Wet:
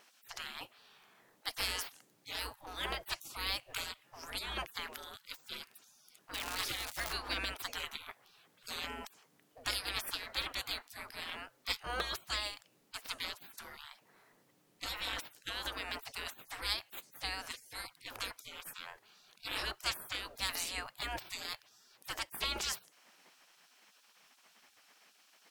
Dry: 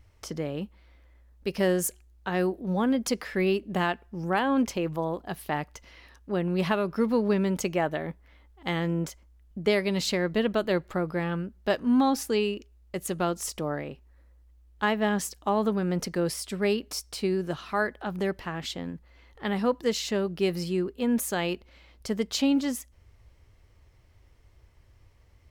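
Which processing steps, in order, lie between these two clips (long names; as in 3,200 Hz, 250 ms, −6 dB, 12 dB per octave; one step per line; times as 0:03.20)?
0:06.33–0:07.12: surface crackle 390 per second −37 dBFS
gate on every frequency bin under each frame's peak −30 dB weak
level +10 dB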